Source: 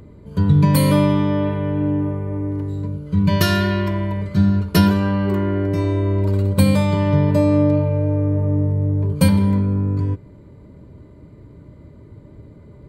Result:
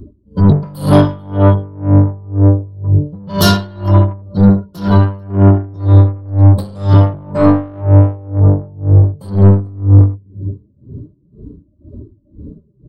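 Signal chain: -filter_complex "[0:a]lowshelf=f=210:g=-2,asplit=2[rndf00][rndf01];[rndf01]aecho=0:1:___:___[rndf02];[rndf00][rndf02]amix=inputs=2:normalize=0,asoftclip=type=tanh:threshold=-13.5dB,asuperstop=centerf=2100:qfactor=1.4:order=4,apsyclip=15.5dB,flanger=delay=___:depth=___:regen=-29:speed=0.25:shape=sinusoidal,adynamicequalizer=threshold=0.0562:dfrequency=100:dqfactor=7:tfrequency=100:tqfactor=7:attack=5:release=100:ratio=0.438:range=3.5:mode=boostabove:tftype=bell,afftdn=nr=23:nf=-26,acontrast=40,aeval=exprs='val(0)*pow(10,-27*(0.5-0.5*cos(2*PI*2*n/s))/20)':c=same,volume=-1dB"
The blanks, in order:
437, 0.075, 3.1, 8.3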